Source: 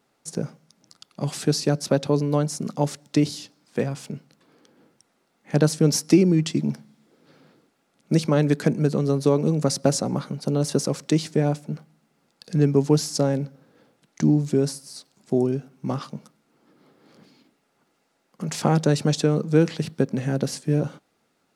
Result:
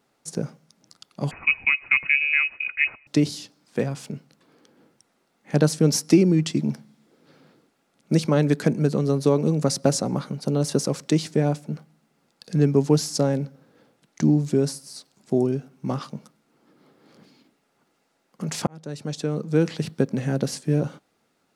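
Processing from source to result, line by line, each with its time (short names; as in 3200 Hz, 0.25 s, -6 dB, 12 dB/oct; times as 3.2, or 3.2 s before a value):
1.31–3.07 inverted band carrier 2700 Hz
18.67–19.86 fade in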